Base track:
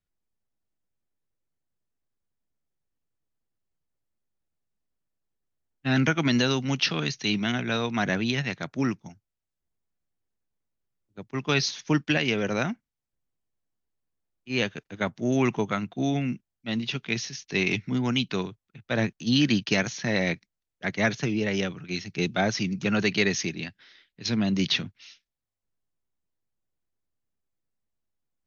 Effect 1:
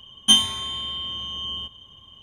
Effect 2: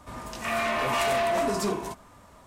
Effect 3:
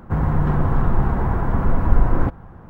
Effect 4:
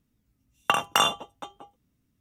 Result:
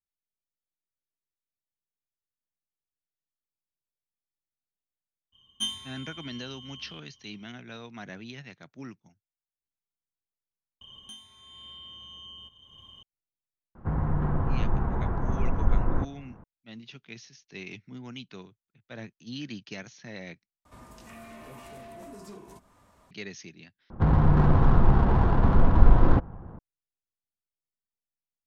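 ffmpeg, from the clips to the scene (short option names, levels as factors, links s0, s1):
-filter_complex "[1:a]asplit=2[s0][s1];[3:a]asplit=2[s2][s3];[0:a]volume=0.158[s4];[s0]equalizer=f=610:w=1.3:g=-7.5[s5];[s1]acompressor=threshold=0.0112:ratio=8:attack=0.68:release=452:knee=1:detection=rms[s6];[s2]aemphasis=mode=reproduction:type=75kf[s7];[2:a]acrossover=split=400|7500[s8][s9][s10];[s8]acompressor=threshold=0.0141:ratio=4[s11];[s9]acompressor=threshold=0.00708:ratio=4[s12];[s10]acompressor=threshold=0.00224:ratio=4[s13];[s11][s12][s13]amix=inputs=3:normalize=0[s14];[s3]adynamicsmooth=sensitivity=2.5:basefreq=1200[s15];[s4]asplit=4[s16][s17][s18][s19];[s16]atrim=end=10.814[s20];[s6]atrim=end=2.22,asetpts=PTS-STARTPTS,volume=0.75[s21];[s17]atrim=start=13.026:end=20.654[s22];[s14]atrim=end=2.46,asetpts=PTS-STARTPTS,volume=0.376[s23];[s18]atrim=start=23.106:end=23.904[s24];[s15]atrim=end=2.69,asetpts=PTS-STARTPTS,volume=0.891[s25];[s19]atrim=start=26.586[s26];[s5]atrim=end=2.22,asetpts=PTS-STARTPTS,volume=0.168,afade=t=in:d=0.02,afade=t=out:st=2.2:d=0.02,adelay=5320[s27];[s7]atrim=end=2.69,asetpts=PTS-STARTPTS,volume=0.398,afade=t=in:d=0.004:c=hsin,afade=t=out:st=2.686:d=0.004:c=hsin,adelay=13750[s28];[s20][s21]acrossfade=d=0.004:c1=hsin:c2=hsin[s29];[s29][s22]acrossfade=d=0.004:c1=hsin:c2=hsin[s30];[s30][s23]acrossfade=d=0.004:c1=hsin:c2=hsin[s31];[s31][s24]acrossfade=d=0.004:c1=hsin:c2=hsin[s32];[s32][s25]acrossfade=d=0.004:c1=hsin:c2=hsin[s33];[s33][s26]acrossfade=d=0.004:c1=hsin:c2=hsin[s34];[s34][s27][s28]amix=inputs=3:normalize=0"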